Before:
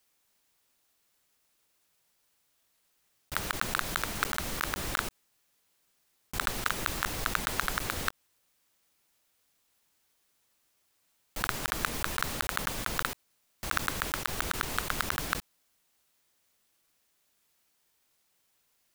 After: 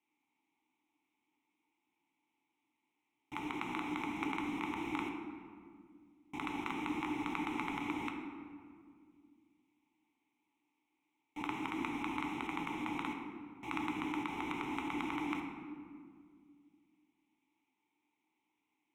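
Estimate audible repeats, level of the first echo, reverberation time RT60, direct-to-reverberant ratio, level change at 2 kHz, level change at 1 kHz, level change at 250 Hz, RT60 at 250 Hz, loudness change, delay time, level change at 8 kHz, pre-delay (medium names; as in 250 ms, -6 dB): no echo, no echo, 2.0 s, 2.0 dB, -10.0 dB, -5.5 dB, +5.5 dB, 2.9 s, -7.5 dB, no echo, -23.0 dB, 5 ms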